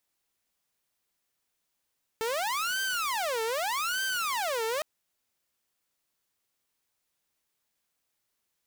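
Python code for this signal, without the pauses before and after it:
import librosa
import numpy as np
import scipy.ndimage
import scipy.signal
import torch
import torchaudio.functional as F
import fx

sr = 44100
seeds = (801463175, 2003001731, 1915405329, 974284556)

y = fx.siren(sr, length_s=2.61, kind='wail', low_hz=444.0, high_hz=1560.0, per_s=0.82, wave='saw', level_db=-25.5)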